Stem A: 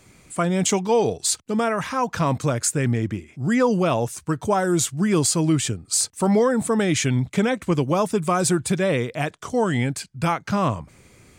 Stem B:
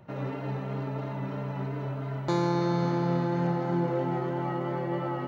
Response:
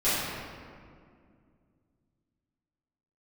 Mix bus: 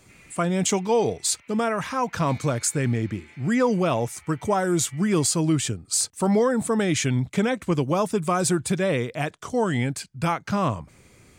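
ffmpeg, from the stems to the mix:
-filter_complex "[0:a]volume=-2dB[a];[1:a]highpass=f=2.3k:t=q:w=8,volume=-13dB[b];[a][b]amix=inputs=2:normalize=0"

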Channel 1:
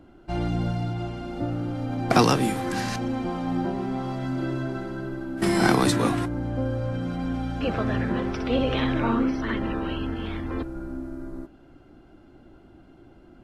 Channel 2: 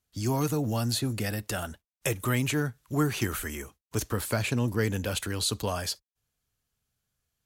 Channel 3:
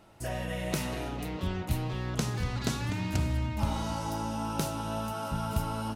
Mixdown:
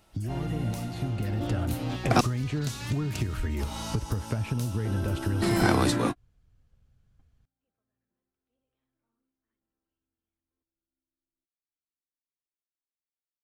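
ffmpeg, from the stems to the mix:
-filter_complex "[0:a]volume=-8dB,asplit=3[a][b][c];[a]atrim=end=2.21,asetpts=PTS-STARTPTS,afade=t=out:st=2.206:d=0.004:c=hsin[d];[b]atrim=start=2.21:end=4.85,asetpts=PTS-STARTPTS,volume=0[e];[c]atrim=start=4.85,asetpts=PTS-STARTPTS,afade=t=in:d=0.004:c=hsin[f];[d][e][f]concat=n=3:v=0:a=1[g];[1:a]acompressor=threshold=-32dB:ratio=3,aemphasis=mode=reproduction:type=riaa,volume=0.5dB,asplit=2[h][i];[2:a]highshelf=f=2.3k:g=11,volume=-8dB[j];[i]apad=whole_len=592376[k];[g][k]sidechaingate=range=-58dB:threshold=-58dB:ratio=16:detection=peak[l];[h][j]amix=inputs=2:normalize=0,acompressor=threshold=-31dB:ratio=5,volume=0dB[m];[l][m]amix=inputs=2:normalize=0,dynaudnorm=f=480:g=5:m=4.5dB"

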